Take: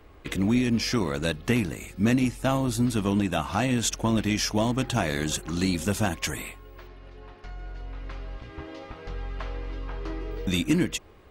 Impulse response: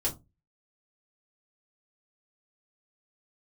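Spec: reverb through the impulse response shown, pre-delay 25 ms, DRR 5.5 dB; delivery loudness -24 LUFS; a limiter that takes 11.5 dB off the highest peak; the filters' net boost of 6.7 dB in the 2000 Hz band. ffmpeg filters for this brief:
-filter_complex "[0:a]equalizer=f=2k:t=o:g=8.5,alimiter=limit=-19.5dB:level=0:latency=1,asplit=2[a][b];[1:a]atrim=start_sample=2205,adelay=25[c];[b][c]afir=irnorm=-1:irlink=0,volume=-10.5dB[d];[a][d]amix=inputs=2:normalize=0,volume=5dB"

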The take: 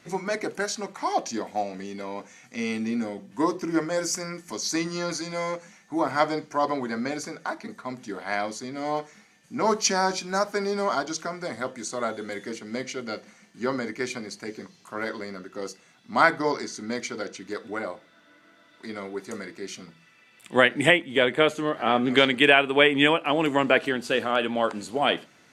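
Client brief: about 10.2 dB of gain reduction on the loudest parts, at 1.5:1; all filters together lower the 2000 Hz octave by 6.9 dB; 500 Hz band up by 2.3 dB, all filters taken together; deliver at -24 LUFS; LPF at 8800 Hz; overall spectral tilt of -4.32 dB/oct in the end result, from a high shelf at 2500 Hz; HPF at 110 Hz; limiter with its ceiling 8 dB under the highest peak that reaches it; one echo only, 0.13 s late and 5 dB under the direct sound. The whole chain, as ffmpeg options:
-af "highpass=110,lowpass=8.8k,equalizer=f=500:t=o:g=3.5,equalizer=f=2k:t=o:g=-5,highshelf=f=2.5k:g=-9,acompressor=threshold=-43dB:ratio=1.5,alimiter=limit=-23.5dB:level=0:latency=1,aecho=1:1:130:0.562,volume=11.5dB"

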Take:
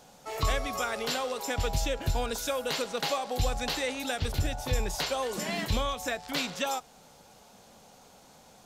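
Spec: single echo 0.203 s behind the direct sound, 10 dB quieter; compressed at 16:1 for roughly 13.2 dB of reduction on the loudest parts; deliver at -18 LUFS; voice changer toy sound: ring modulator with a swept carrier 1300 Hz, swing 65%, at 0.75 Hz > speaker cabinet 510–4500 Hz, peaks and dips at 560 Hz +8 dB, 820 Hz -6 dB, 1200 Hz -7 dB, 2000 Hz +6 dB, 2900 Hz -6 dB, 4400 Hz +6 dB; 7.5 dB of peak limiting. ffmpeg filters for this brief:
-af "acompressor=threshold=-36dB:ratio=16,alimiter=level_in=8dB:limit=-24dB:level=0:latency=1,volume=-8dB,aecho=1:1:203:0.316,aeval=exprs='val(0)*sin(2*PI*1300*n/s+1300*0.65/0.75*sin(2*PI*0.75*n/s))':c=same,highpass=510,equalizer=f=560:t=q:w=4:g=8,equalizer=f=820:t=q:w=4:g=-6,equalizer=f=1.2k:t=q:w=4:g=-7,equalizer=f=2k:t=q:w=4:g=6,equalizer=f=2.9k:t=q:w=4:g=-6,equalizer=f=4.4k:t=q:w=4:g=6,lowpass=f=4.5k:w=0.5412,lowpass=f=4.5k:w=1.3066,volume=26dB"

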